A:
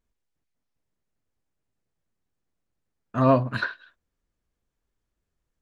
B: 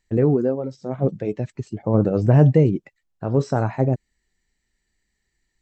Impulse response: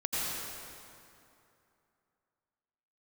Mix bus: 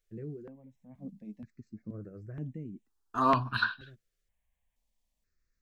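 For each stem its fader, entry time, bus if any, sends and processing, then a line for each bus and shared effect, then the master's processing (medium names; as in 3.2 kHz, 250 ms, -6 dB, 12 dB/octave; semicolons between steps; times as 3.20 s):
+3.0 dB, 0.00 s, no send, none
-12.5 dB, 0.00 s, no send, FFT filter 140 Hz 0 dB, 220 Hz +14 dB, 540 Hz -12 dB, 820 Hz -14 dB, 1.7 kHz -6 dB, 2.9 kHz -12 dB; auto duck -10 dB, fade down 1.10 s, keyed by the first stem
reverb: none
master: peaking EQ 200 Hz -11.5 dB 2.9 oct; stepped phaser 2.1 Hz 250–4700 Hz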